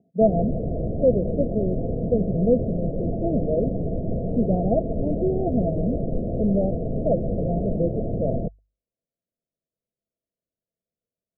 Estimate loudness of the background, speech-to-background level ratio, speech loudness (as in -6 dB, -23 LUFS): -28.0 LUFS, 2.0 dB, -26.0 LUFS